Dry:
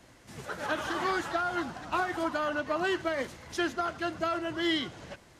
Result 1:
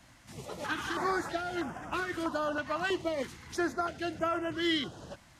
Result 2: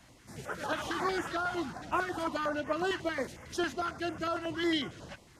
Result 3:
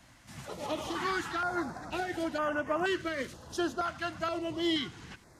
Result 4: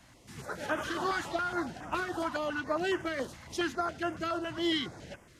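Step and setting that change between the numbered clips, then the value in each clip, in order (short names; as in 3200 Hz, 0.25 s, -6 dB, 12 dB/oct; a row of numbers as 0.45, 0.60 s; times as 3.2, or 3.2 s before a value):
stepped notch, rate: 3.1, 11, 2.1, 7.2 Hz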